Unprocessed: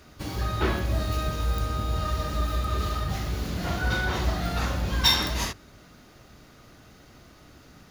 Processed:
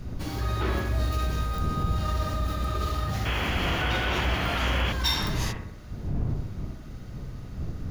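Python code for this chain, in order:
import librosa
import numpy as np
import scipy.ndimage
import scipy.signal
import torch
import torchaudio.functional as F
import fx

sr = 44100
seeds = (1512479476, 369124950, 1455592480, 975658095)

p1 = fx.dmg_wind(x, sr, seeds[0], corner_hz=120.0, level_db=-32.0)
p2 = fx.over_compress(p1, sr, threshold_db=-28.0, ratio=-1.0)
p3 = p1 + (p2 * 10.0 ** (-2.5 / 20.0))
p4 = fx.echo_bbd(p3, sr, ms=65, stages=1024, feedback_pct=52, wet_db=-5.5)
p5 = fx.spec_paint(p4, sr, seeds[1], shape='noise', start_s=3.25, length_s=1.68, low_hz=230.0, high_hz=3400.0, level_db=-24.0)
y = p5 * 10.0 ** (-7.0 / 20.0)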